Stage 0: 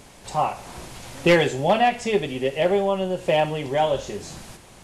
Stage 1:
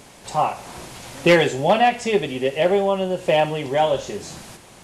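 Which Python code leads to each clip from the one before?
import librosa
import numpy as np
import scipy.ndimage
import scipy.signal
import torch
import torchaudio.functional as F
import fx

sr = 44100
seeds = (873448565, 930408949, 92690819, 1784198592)

y = fx.low_shelf(x, sr, hz=62.0, db=-11.5)
y = F.gain(torch.from_numpy(y), 2.5).numpy()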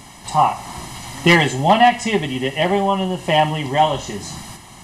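y = x + 0.74 * np.pad(x, (int(1.0 * sr / 1000.0), 0))[:len(x)]
y = F.gain(torch.from_numpy(y), 3.0).numpy()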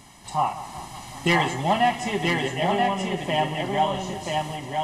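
y = x + 10.0 ** (-3.5 / 20.0) * np.pad(x, (int(981 * sr / 1000.0), 0))[:len(x)]
y = fx.echo_warbled(y, sr, ms=187, feedback_pct=75, rate_hz=2.8, cents=63, wet_db=-15.0)
y = F.gain(torch.from_numpy(y), -8.5).numpy()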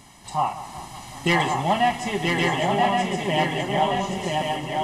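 y = x + 10.0 ** (-4.0 / 20.0) * np.pad(x, (int(1121 * sr / 1000.0), 0))[:len(x)]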